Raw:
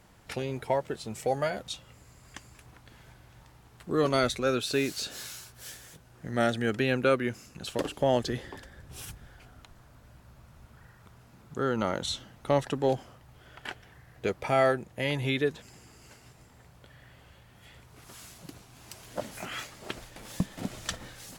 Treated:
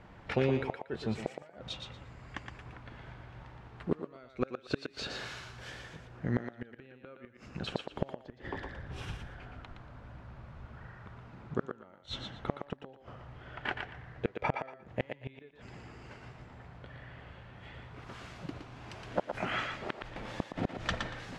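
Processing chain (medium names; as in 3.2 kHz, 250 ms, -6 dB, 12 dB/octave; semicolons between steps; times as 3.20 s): low-pass 2.5 kHz 12 dB/octave; inverted gate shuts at -21 dBFS, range -33 dB; thinning echo 117 ms, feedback 22%, high-pass 420 Hz, level -5 dB; trim +5 dB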